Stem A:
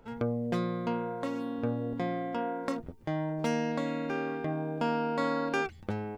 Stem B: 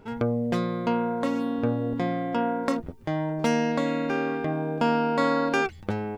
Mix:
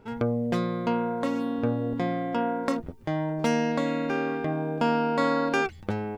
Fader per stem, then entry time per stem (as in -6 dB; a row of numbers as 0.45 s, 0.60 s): -8.0 dB, -3.0 dB; 0.00 s, 0.00 s